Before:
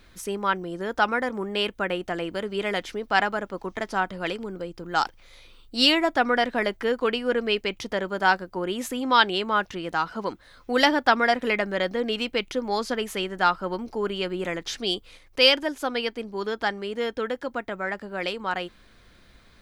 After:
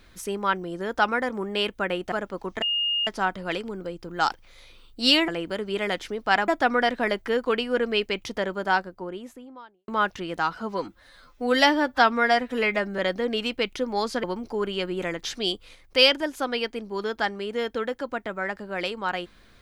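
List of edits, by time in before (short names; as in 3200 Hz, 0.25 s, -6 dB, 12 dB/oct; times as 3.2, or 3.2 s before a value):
2.12–3.32 move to 6.03
3.82 add tone 2840 Hz -22 dBFS 0.45 s
7.88–9.43 studio fade out
10.15–11.74 stretch 1.5×
12.99–13.66 cut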